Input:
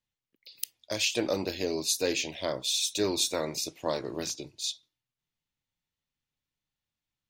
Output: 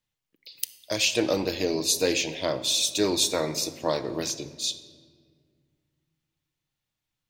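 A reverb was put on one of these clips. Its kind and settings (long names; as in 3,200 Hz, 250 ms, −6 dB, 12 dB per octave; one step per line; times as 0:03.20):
rectangular room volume 2,700 cubic metres, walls mixed, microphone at 0.56 metres
level +4 dB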